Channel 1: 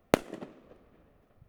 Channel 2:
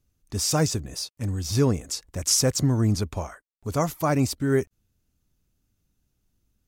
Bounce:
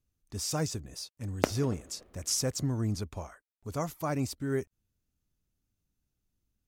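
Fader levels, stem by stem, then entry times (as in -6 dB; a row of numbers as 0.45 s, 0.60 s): -3.0 dB, -9.0 dB; 1.30 s, 0.00 s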